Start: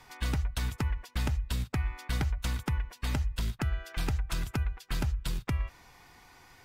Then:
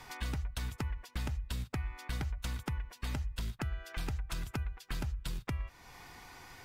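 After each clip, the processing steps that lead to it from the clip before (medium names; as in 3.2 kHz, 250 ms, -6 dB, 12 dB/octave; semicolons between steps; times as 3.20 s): compression 2:1, threshold -46 dBFS, peak gain reduction 11 dB; trim +4 dB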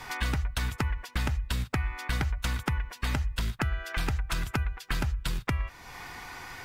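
dynamic bell 1.6 kHz, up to +5 dB, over -59 dBFS, Q 0.77; trim +7 dB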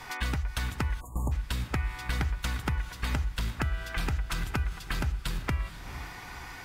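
echo that smears into a reverb 453 ms, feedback 45%, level -12 dB; spectral selection erased 1.00–1.32 s, 1.2–6.6 kHz; trim -1.5 dB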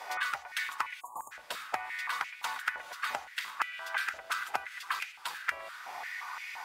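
step-sequenced high-pass 5.8 Hz 610–2300 Hz; trim -2.5 dB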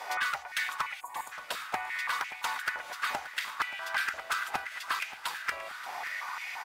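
overload inside the chain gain 26 dB; feedback delay 578 ms, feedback 56%, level -15.5 dB; trim +3 dB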